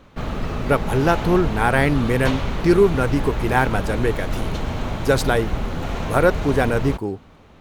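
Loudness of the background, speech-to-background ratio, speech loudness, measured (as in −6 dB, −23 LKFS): −27.0 LKFS, 6.5 dB, −20.5 LKFS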